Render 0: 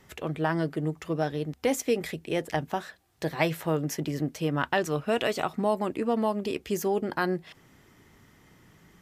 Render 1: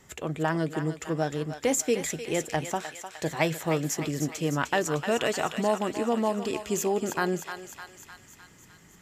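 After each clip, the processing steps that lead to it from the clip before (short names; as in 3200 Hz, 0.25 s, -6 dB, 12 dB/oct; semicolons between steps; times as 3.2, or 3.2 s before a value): bell 7200 Hz +12 dB 0.32 oct; on a send: thinning echo 0.304 s, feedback 67%, high-pass 900 Hz, level -7 dB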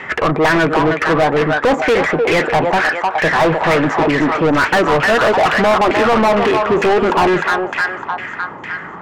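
LFO low-pass saw down 2.2 Hz 800–2400 Hz; overdrive pedal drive 33 dB, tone 2500 Hz, clips at -8.5 dBFS; gain +3.5 dB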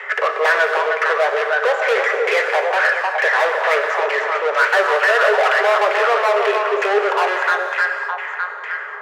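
rippled Chebyshev high-pass 400 Hz, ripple 6 dB; non-linear reverb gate 0.28 s flat, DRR 6 dB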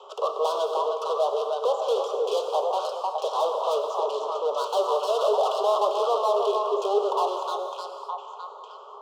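elliptic band-stop 1100–3200 Hz, stop band 50 dB; gain -5 dB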